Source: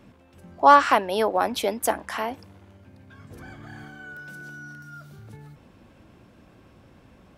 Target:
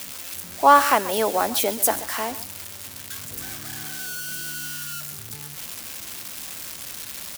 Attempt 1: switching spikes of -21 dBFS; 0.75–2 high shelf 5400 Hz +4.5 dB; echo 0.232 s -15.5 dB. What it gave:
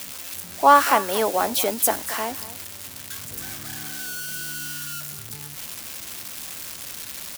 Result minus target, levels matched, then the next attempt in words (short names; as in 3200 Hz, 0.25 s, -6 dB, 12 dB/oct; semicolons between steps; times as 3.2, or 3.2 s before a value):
echo 97 ms late
switching spikes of -21 dBFS; 0.75–2 high shelf 5400 Hz +4.5 dB; echo 0.135 s -15.5 dB